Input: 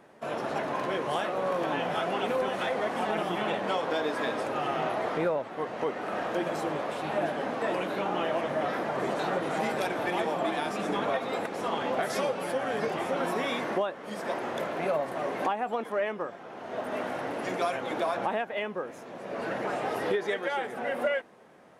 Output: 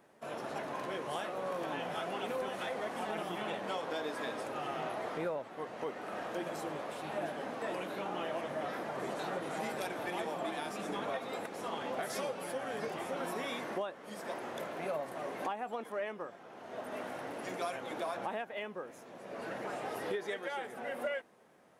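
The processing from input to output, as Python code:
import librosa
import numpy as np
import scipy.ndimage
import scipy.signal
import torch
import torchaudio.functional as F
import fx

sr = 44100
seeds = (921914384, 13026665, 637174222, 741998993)

y = fx.high_shelf(x, sr, hz=6800.0, db=9.0)
y = y * librosa.db_to_amplitude(-8.5)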